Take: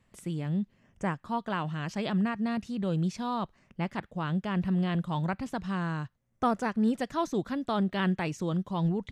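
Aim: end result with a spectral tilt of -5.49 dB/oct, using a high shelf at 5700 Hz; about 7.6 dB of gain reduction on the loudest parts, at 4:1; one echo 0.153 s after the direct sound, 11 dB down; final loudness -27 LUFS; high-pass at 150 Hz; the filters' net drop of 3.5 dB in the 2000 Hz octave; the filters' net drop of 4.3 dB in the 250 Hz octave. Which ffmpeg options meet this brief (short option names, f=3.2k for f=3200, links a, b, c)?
-af "highpass=150,equalizer=f=250:t=o:g=-4.5,equalizer=f=2k:t=o:g=-5.5,highshelf=f=5.7k:g=9,acompressor=threshold=-33dB:ratio=4,aecho=1:1:153:0.282,volume=11dB"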